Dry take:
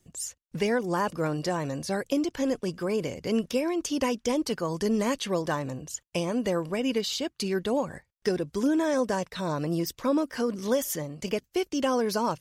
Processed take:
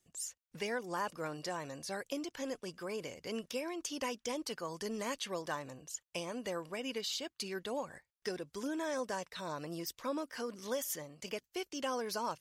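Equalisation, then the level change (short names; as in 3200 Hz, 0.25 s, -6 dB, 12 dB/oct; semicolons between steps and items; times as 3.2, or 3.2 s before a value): low shelf 440 Hz -11.5 dB; -6.5 dB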